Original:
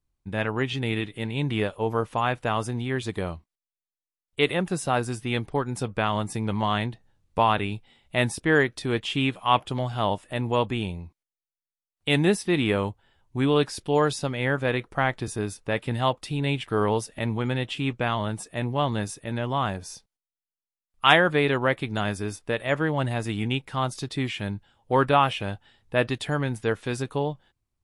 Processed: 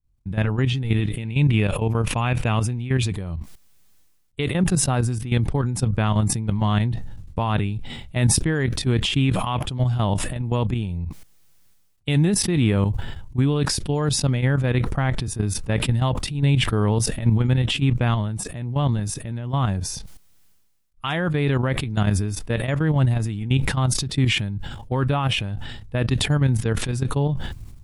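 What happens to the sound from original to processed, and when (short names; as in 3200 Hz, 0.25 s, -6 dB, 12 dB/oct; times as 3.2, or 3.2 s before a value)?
1.18–3.14 bell 2500 Hz +9.5 dB 0.37 oct
whole clip: level quantiser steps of 13 dB; tone controls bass +14 dB, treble +2 dB; sustainer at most 41 dB/s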